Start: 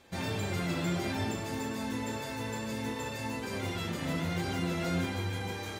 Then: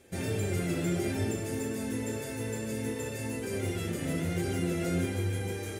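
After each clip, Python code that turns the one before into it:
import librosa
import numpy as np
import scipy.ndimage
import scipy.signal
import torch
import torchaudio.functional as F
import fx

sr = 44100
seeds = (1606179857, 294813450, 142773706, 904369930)

y = fx.graphic_eq_15(x, sr, hz=(100, 400, 1000, 4000, 10000), db=(4, 7, -11, -7, 10))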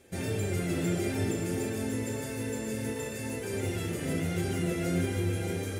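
y = x + 10.0 ** (-7.0 / 20.0) * np.pad(x, (int(580 * sr / 1000.0), 0))[:len(x)]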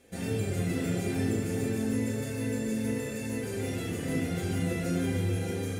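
y = fx.room_shoebox(x, sr, seeds[0], volume_m3=990.0, walls='furnished', distance_m=1.9)
y = y * librosa.db_to_amplitude(-2.5)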